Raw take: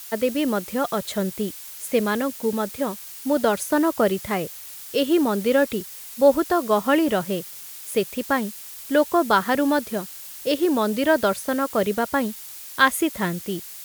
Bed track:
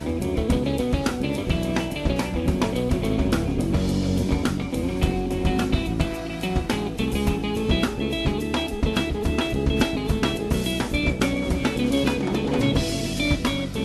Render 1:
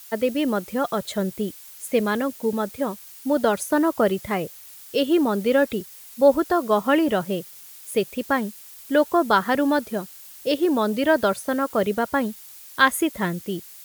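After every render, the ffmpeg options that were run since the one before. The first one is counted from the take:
ffmpeg -i in.wav -af "afftdn=noise_reduction=6:noise_floor=-39" out.wav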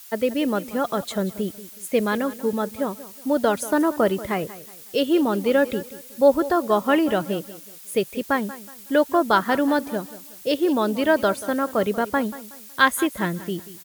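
ffmpeg -i in.wav -af "aecho=1:1:185|370|555:0.15|0.0509|0.0173" out.wav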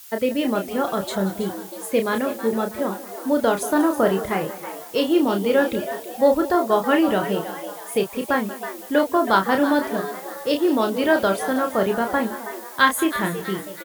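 ffmpeg -i in.wav -filter_complex "[0:a]asplit=2[link_01][link_02];[link_02]adelay=31,volume=-6dB[link_03];[link_01][link_03]amix=inputs=2:normalize=0,asplit=6[link_04][link_05][link_06][link_07][link_08][link_09];[link_05]adelay=323,afreqshift=130,volume=-12dB[link_10];[link_06]adelay=646,afreqshift=260,volume=-18.7dB[link_11];[link_07]adelay=969,afreqshift=390,volume=-25.5dB[link_12];[link_08]adelay=1292,afreqshift=520,volume=-32.2dB[link_13];[link_09]adelay=1615,afreqshift=650,volume=-39dB[link_14];[link_04][link_10][link_11][link_12][link_13][link_14]amix=inputs=6:normalize=0" out.wav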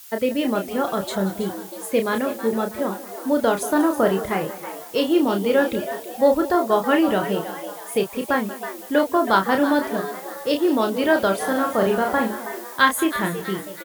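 ffmpeg -i in.wav -filter_complex "[0:a]asettb=1/sr,asplit=3[link_01][link_02][link_03];[link_01]atrim=end=11.364[link_04];[link_02]atrim=start=11.36:end=12.77,asetpts=PTS-STARTPTS,afade=type=in:duration=0.004:curve=qsin,afade=type=out:start_time=1.406:duration=0.004:curve=qsin,asplit=2[link_05][link_06];[link_06]adelay=41,volume=-5dB[link_07];[link_05][link_07]amix=inputs=2:normalize=0,atrim=end_sample=62181[link_08];[link_03]atrim=start=12.766[link_09];[link_04][link_08]acrossfade=duration=0.004:curve1=hsin:curve2=qsin[link_10];[link_10][link_09]acrossfade=duration=0.004:curve1=qsin:curve2=hsin" out.wav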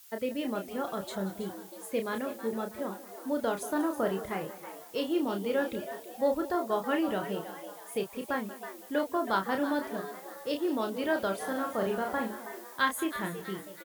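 ffmpeg -i in.wav -af "volume=-11dB" out.wav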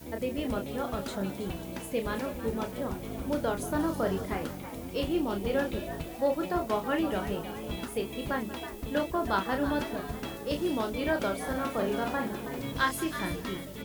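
ffmpeg -i in.wav -i bed.wav -filter_complex "[1:a]volume=-15.5dB[link_01];[0:a][link_01]amix=inputs=2:normalize=0" out.wav

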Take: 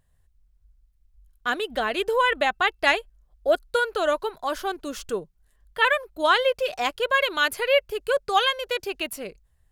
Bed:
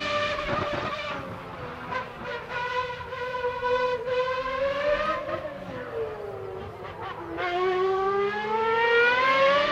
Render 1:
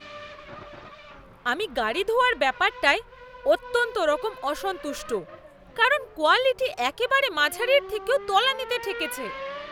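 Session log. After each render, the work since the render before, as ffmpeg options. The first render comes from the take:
ffmpeg -i in.wav -i bed.wav -filter_complex "[1:a]volume=-14dB[link_01];[0:a][link_01]amix=inputs=2:normalize=0" out.wav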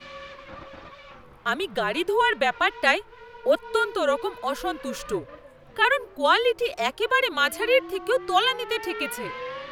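ffmpeg -i in.wav -af "afreqshift=-43" out.wav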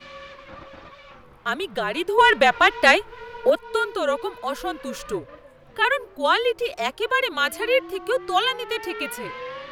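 ffmpeg -i in.wav -filter_complex "[0:a]asettb=1/sr,asplit=3[link_01][link_02][link_03];[link_01]atrim=end=2.184[link_04];[link_02]atrim=start=2.18:end=3.5,asetpts=PTS-STARTPTS,afade=type=in:duration=0.004:curve=qsin,afade=type=out:start_time=1.316:duration=0.004:curve=qsin,acontrast=77[link_05];[link_03]atrim=start=3.496[link_06];[link_04][link_05]acrossfade=duration=0.004:curve1=hsin:curve2=qsin[link_07];[link_07][link_06]acrossfade=duration=0.004:curve1=qsin:curve2=hsin" out.wav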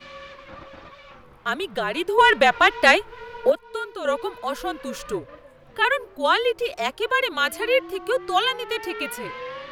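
ffmpeg -i in.wav -filter_complex "[0:a]asplit=3[link_01][link_02][link_03];[link_01]atrim=end=3.522[link_04];[link_02]atrim=start=3.518:end=4.052,asetpts=PTS-STARTPTS,volume=-7dB[link_05];[link_03]atrim=start=4.048[link_06];[link_04][link_05]acrossfade=duration=0.004:curve1=hsin:curve2=hsin[link_07];[link_07][link_06]acrossfade=duration=0.004:curve1=hsin:curve2=hsin" out.wav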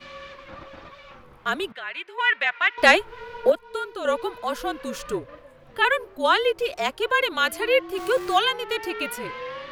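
ffmpeg -i in.wav -filter_complex "[0:a]asettb=1/sr,asplit=3[link_01][link_02][link_03];[link_01]atrim=end=1.724[link_04];[link_02]atrim=start=1.72:end=2.78,asetpts=PTS-STARTPTS,afade=type=in:duration=0.004:curve=qsin,afade=type=out:start_time=1.056:duration=0.004:curve=qsin,bandpass=frequency=2100:width_type=q:width=2.1[link_05];[link_03]atrim=start=2.776[link_06];[link_04][link_05]acrossfade=duration=0.004:curve1=hsin:curve2=qsin[link_07];[link_07][link_06]acrossfade=duration=0.004:curve1=qsin:curve2=hsin,asettb=1/sr,asplit=3[link_08][link_09][link_10];[link_08]atrim=end=7.974[link_11];[link_09]atrim=start=7.97:end=8.38,asetpts=PTS-STARTPTS,afade=type=in:duration=0.004:curve=qsin,afade=type=out:start_time=0.406:duration=0.004:curve=qsin,aeval=exprs='val(0)+0.5*0.0251*sgn(val(0))':channel_layout=same[link_12];[link_10]atrim=start=8.376[link_13];[link_11][link_12]acrossfade=duration=0.004:curve1=hsin:curve2=qsin[link_14];[link_14][link_13]acrossfade=duration=0.004:curve1=qsin:curve2=hsin" out.wav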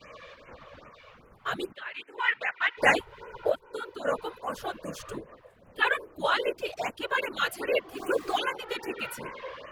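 ffmpeg -i in.wav -af "afftfilt=real='hypot(re,im)*cos(2*PI*random(0))':imag='hypot(re,im)*sin(2*PI*random(1))':win_size=512:overlap=0.75,afftfilt=real='re*(1-between(b*sr/1024,210*pow(4400/210,0.5+0.5*sin(2*PI*2.5*pts/sr))/1.41,210*pow(4400/210,0.5+0.5*sin(2*PI*2.5*pts/sr))*1.41))':imag='im*(1-between(b*sr/1024,210*pow(4400/210,0.5+0.5*sin(2*PI*2.5*pts/sr))/1.41,210*pow(4400/210,0.5+0.5*sin(2*PI*2.5*pts/sr))*1.41))':win_size=1024:overlap=0.75" out.wav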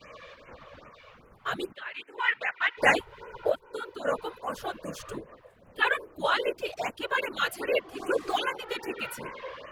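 ffmpeg -i in.wav -filter_complex "[0:a]asettb=1/sr,asplit=3[link_01][link_02][link_03];[link_01]atrim=end=7.824[link_04];[link_02]atrim=start=7.82:end=8.3,asetpts=PTS-STARTPTS,afade=type=in:duration=0.004:curve=qsin,afade=type=out:start_time=0.476:duration=0.004:curve=qsin,lowpass=11000[link_05];[link_03]atrim=start=8.296[link_06];[link_04][link_05]acrossfade=duration=0.004:curve1=hsin:curve2=qsin[link_07];[link_07][link_06]acrossfade=duration=0.004:curve1=qsin:curve2=hsin" out.wav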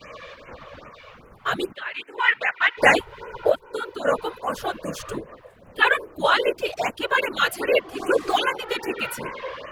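ffmpeg -i in.wav -af "volume=7dB,alimiter=limit=-3dB:level=0:latency=1" out.wav

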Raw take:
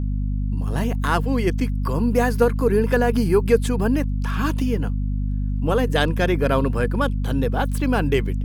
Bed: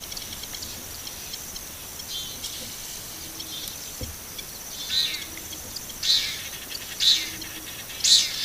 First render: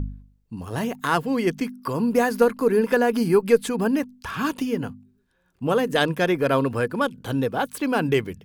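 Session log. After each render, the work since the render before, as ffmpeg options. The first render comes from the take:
ffmpeg -i in.wav -af "bandreject=frequency=50:width_type=h:width=4,bandreject=frequency=100:width_type=h:width=4,bandreject=frequency=150:width_type=h:width=4,bandreject=frequency=200:width_type=h:width=4,bandreject=frequency=250:width_type=h:width=4" out.wav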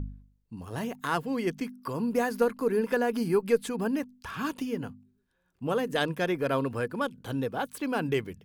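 ffmpeg -i in.wav -af "volume=-7dB" out.wav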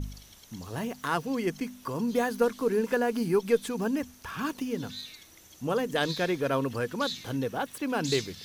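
ffmpeg -i in.wav -i bed.wav -filter_complex "[1:a]volume=-17.5dB[link_01];[0:a][link_01]amix=inputs=2:normalize=0" out.wav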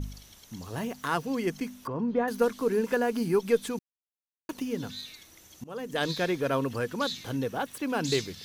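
ffmpeg -i in.wav -filter_complex "[0:a]asettb=1/sr,asplit=3[link_01][link_02][link_03];[link_01]atrim=end=1.874[link_04];[link_02]atrim=start=1.87:end=2.28,asetpts=PTS-STARTPTS,afade=type=in:duration=0.004:curve=qsin,afade=type=out:start_time=0.406:duration=0.004:curve=qsin,lowpass=1700[link_05];[link_03]atrim=start=2.276[link_06];[link_04][link_05]acrossfade=duration=0.004:curve1=hsin:curve2=qsin[link_07];[link_07][link_06]acrossfade=duration=0.004:curve1=qsin:curve2=hsin,asplit=4[link_08][link_09][link_10][link_11];[link_08]atrim=end=3.79,asetpts=PTS-STARTPTS,afade=type=out:start_time=3.786:duration=0.004:curve=hsin[link_12];[link_09]atrim=start=3.79:end=4.49,asetpts=PTS-STARTPTS,volume=0[link_13];[link_10]atrim=start=4.49:end=5.64,asetpts=PTS-STARTPTS,afade=type=in:duration=0.004:curve=hsin,afade=type=out:start_time=1.146:duration=0.004:curve=hsin:silence=0.0668344[link_14];[link_11]atrim=start=5.64,asetpts=PTS-STARTPTS,afade=type=in:duration=0.44:silence=0.0668344[link_15];[link_12][link_13][link_14][link_15]concat=n=4:v=0:a=1" out.wav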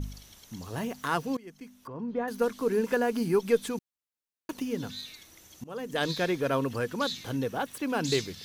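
ffmpeg -i in.wav -filter_complex "[0:a]asplit=2[link_01][link_02];[link_01]atrim=end=1.37,asetpts=PTS-STARTPTS,afade=type=out:start_time=1.366:duration=0.004:curve=hsin:silence=0.0749894[link_03];[link_02]atrim=start=1.37,asetpts=PTS-STARTPTS,afade=type=in:duration=1.42:silence=0.0749894[link_04];[link_03][link_04]concat=n=2:v=0:a=1" out.wav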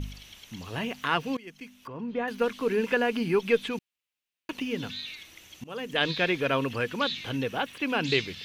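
ffmpeg -i in.wav -filter_complex "[0:a]acrossover=split=4000[link_01][link_02];[link_02]acompressor=threshold=-54dB:ratio=4:attack=1:release=60[link_03];[link_01][link_03]amix=inputs=2:normalize=0,equalizer=frequency=2700:width=1.3:gain=12.5" out.wav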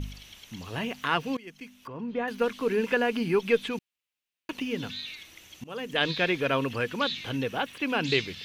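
ffmpeg -i in.wav -af anull out.wav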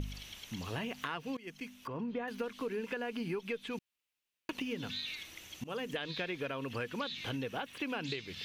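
ffmpeg -i in.wav -af "alimiter=limit=-16dB:level=0:latency=1:release=328,acompressor=threshold=-35dB:ratio=6" out.wav

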